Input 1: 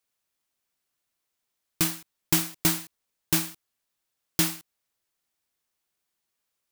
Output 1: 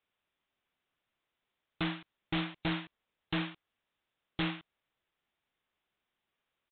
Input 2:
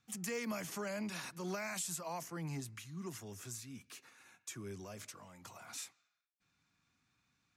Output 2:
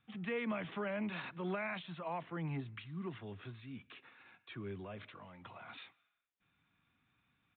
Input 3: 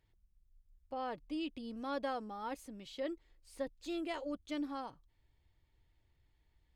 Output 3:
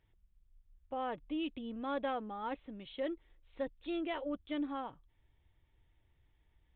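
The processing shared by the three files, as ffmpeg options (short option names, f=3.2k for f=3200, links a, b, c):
-af "aresample=8000,asoftclip=type=hard:threshold=-31dB,aresample=44100,volume=2.5dB" -ar 12000 -c:a libmp3lame -b:a 64k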